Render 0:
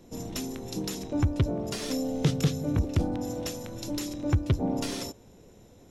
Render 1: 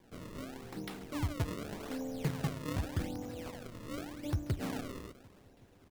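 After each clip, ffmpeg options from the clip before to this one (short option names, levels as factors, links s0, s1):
-af "aecho=1:1:373|746|1119|1492:0.0841|0.0488|0.0283|0.0164,flanger=delay=8.5:depth=4.6:regen=-88:speed=1.3:shape=triangular,acrusher=samples=32:mix=1:aa=0.000001:lfo=1:lforange=51.2:lforate=0.85,volume=0.562"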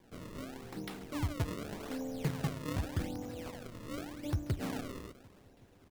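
-af anull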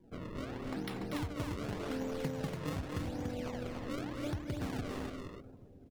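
-filter_complex "[0:a]afftdn=nr=17:nf=-59,acompressor=threshold=0.0112:ratio=6,asplit=2[s0][s1];[s1]aecho=0:1:239.1|288.6:0.398|0.631[s2];[s0][s2]amix=inputs=2:normalize=0,volume=1.5"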